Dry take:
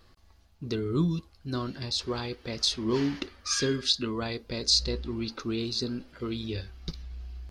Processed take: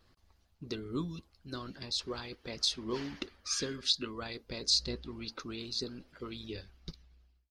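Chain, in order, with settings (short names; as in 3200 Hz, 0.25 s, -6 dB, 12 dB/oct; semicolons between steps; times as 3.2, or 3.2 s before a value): ending faded out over 0.99 s; harmonic-percussive split harmonic -10 dB; gain -3.5 dB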